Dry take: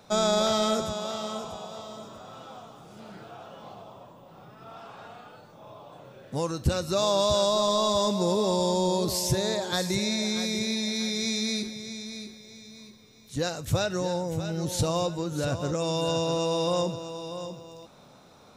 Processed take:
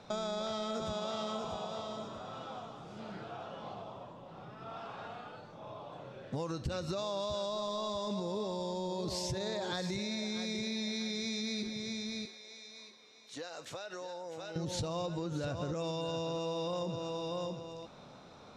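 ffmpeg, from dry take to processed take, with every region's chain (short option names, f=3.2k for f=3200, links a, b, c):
-filter_complex "[0:a]asettb=1/sr,asplit=3[a][b][c];[a]atrim=end=12.254[d];[b]atrim=start=12.25:end=14.56,asetpts=PTS-STARTPTS,afade=t=in:d=0.004:c=qsin,afade=t=out:st=2.306:d=0.004:c=qsin,highpass=510,acompressor=threshold=-38dB:ratio=16:attack=3.2:release=140:knee=1:detection=peak[e];[c]atrim=start=14.556[f];[d][e]acrossfade=d=0.004:c1=hsin:c2=qsin[g];[g][f]acrossfade=d=0.004:c1=qsin:c2=hsin,lowpass=5.2k,alimiter=limit=-22.5dB:level=0:latency=1:release=44,acompressor=threshold=-33dB:ratio=6"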